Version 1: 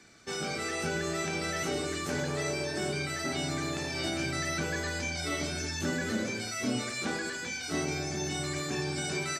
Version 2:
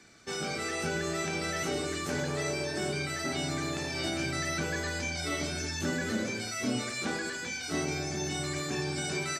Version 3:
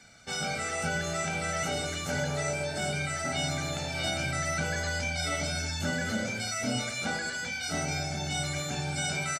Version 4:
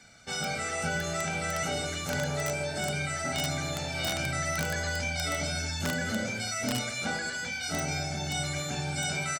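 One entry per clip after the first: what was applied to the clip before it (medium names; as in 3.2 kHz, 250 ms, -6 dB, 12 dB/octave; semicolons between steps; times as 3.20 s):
no audible change
comb 1.4 ms, depth 73%
integer overflow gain 20.5 dB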